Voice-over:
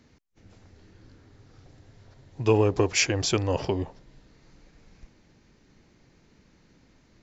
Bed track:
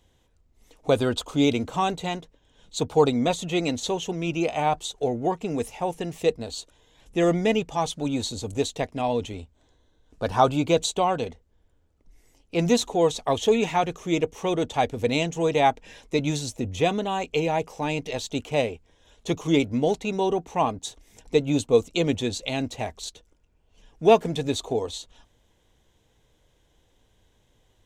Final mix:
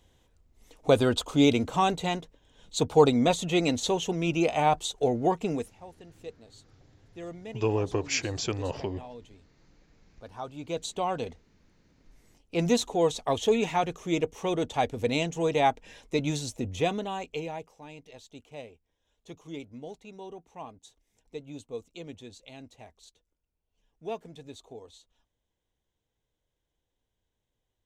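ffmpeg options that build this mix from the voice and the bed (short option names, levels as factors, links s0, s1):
-filter_complex "[0:a]adelay=5150,volume=0.501[s0];[1:a]volume=6.31,afade=t=out:st=5.49:d=0.21:silence=0.105925,afade=t=in:st=10.53:d=0.82:silence=0.158489,afade=t=out:st=16.72:d=1.06:silence=0.16788[s1];[s0][s1]amix=inputs=2:normalize=0"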